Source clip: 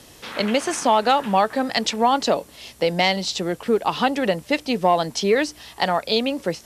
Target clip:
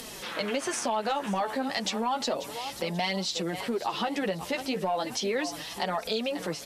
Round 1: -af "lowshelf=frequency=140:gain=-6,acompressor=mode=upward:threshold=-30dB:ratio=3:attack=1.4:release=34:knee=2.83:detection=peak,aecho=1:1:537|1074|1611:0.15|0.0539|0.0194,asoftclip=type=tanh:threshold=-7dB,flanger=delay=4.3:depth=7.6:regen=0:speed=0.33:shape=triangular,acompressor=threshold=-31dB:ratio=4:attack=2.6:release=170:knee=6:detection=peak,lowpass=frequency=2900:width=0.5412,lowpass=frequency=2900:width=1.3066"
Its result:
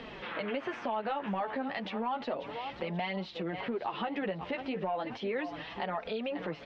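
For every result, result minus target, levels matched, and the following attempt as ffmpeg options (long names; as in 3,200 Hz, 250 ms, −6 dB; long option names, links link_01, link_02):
4,000 Hz band −6.0 dB; downward compressor: peak gain reduction +5 dB
-af "lowshelf=frequency=140:gain=-6,acompressor=mode=upward:threshold=-30dB:ratio=3:attack=1.4:release=34:knee=2.83:detection=peak,aecho=1:1:537|1074|1611:0.15|0.0539|0.0194,asoftclip=type=tanh:threshold=-7dB,flanger=delay=4.3:depth=7.6:regen=0:speed=0.33:shape=triangular,acompressor=threshold=-31dB:ratio=4:attack=2.6:release=170:knee=6:detection=peak"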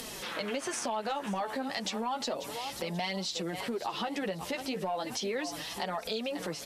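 downward compressor: peak gain reduction +5 dB
-af "lowshelf=frequency=140:gain=-6,acompressor=mode=upward:threshold=-30dB:ratio=3:attack=1.4:release=34:knee=2.83:detection=peak,aecho=1:1:537|1074|1611:0.15|0.0539|0.0194,asoftclip=type=tanh:threshold=-7dB,flanger=delay=4.3:depth=7.6:regen=0:speed=0.33:shape=triangular,acompressor=threshold=-24.5dB:ratio=4:attack=2.6:release=170:knee=6:detection=peak"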